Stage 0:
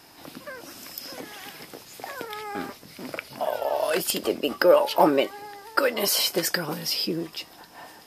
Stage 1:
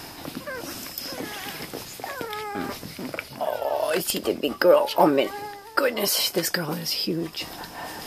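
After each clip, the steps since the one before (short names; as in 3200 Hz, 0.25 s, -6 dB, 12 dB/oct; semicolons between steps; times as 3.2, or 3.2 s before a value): reverse; upward compressor, threshold -26 dBFS; reverse; low shelf 130 Hz +8 dB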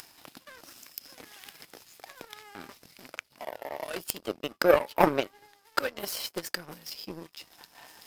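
upward compressor, threshold -31 dBFS; power-law curve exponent 2; mismatched tape noise reduction encoder only; gain +2.5 dB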